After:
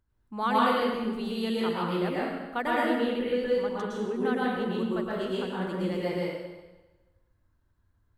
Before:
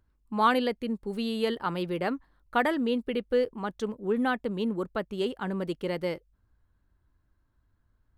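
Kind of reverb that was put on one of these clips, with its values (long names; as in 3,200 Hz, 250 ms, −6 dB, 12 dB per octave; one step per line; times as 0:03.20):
dense smooth reverb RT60 1.2 s, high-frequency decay 0.9×, pre-delay 100 ms, DRR −6.5 dB
level −6.5 dB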